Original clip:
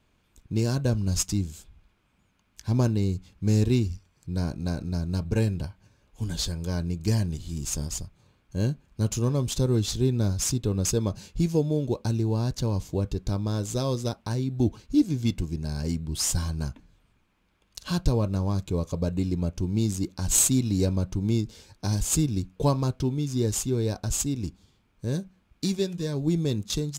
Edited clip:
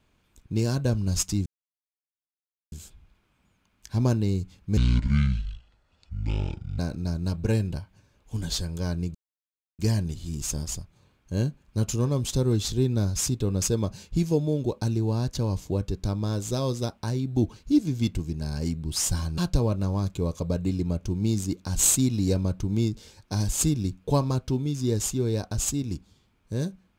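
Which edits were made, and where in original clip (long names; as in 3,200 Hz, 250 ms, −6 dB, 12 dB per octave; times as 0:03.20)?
0:01.46: splice in silence 1.26 s
0:03.51–0:04.66: play speed 57%
0:07.02: splice in silence 0.64 s
0:16.61–0:17.90: remove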